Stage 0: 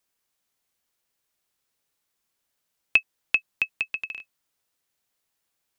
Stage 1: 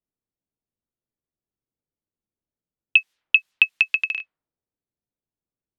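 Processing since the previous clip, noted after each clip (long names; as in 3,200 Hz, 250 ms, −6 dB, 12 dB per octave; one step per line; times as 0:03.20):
brickwall limiter −11 dBFS, peak gain reduction 6 dB
parametric band 3,000 Hz +10 dB 2.4 octaves
low-pass that shuts in the quiet parts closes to 320 Hz, open at −19.5 dBFS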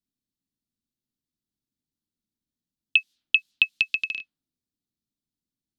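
octave-band graphic EQ 250/500/1,000/2,000/4,000 Hz +9/−10/−10/−10/+8 dB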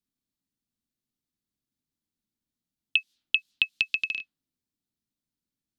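downward compressor 2.5 to 1, threshold −21 dBFS, peak gain reduction 5.5 dB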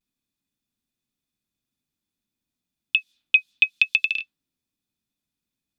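brickwall limiter −9.5 dBFS, peak gain reduction 4.5 dB
pitch vibrato 0.51 Hz 40 cents
hollow resonant body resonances 2,500/3,500 Hz, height 14 dB, ringing for 50 ms
level +3 dB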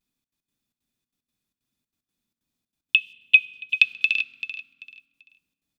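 gate pattern "xxx.x.xxx." 187 BPM −24 dB
repeating echo 388 ms, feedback 26%, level −11.5 dB
convolution reverb RT60 1.9 s, pre-delay 3 ms, DRR 15.5 dB
level +2.5 dB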